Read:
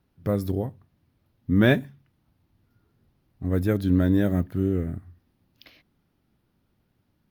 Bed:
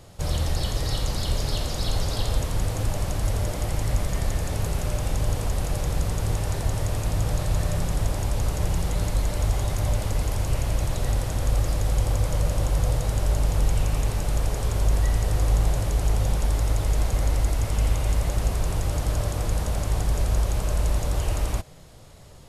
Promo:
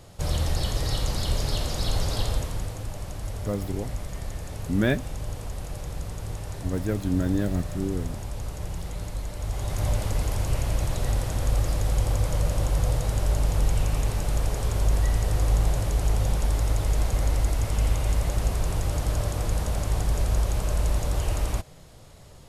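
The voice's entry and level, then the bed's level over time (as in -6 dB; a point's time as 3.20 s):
3.20 s, -4.5 dB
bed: 2.22 s -0.5 dB
2.82 s -8.5 dB
9.39 s -8.5 dB
9.84 s -1 dB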